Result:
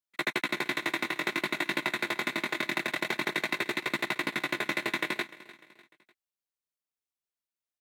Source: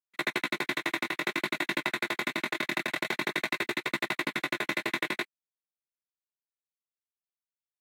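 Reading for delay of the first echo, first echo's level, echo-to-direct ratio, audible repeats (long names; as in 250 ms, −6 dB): 299 ms, −18.5 dB, −17.5 dB, 3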